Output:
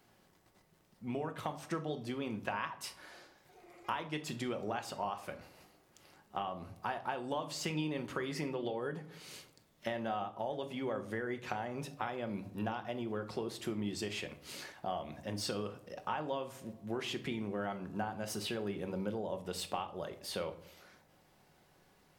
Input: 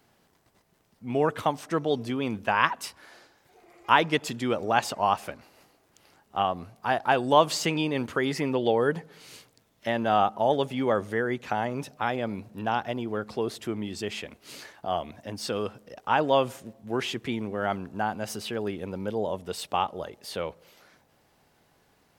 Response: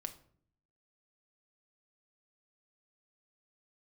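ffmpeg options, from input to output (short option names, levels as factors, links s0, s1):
-filter_complex "[0:a]acompressor=threshold=0.0282:ratio=12[s0];[1:a]atrim=start_sample=2205[s1];[s0][s1]afir=irnorm=-1:irlink=0"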